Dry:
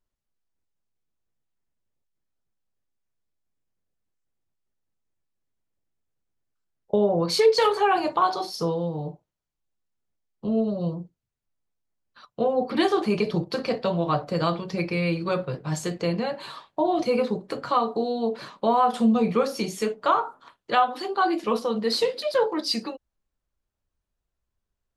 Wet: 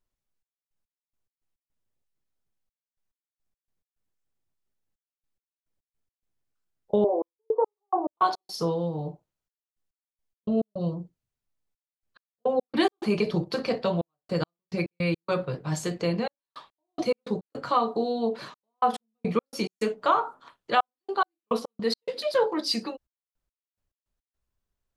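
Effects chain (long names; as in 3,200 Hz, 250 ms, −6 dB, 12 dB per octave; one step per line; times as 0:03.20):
0:07.04–0:08.13: Chebyshev band-pass filter 290–1,100 Hz, order 4
gate pattern "xxx..x..x.x.xxxx" 106 BPM −60 dB
level −1 dB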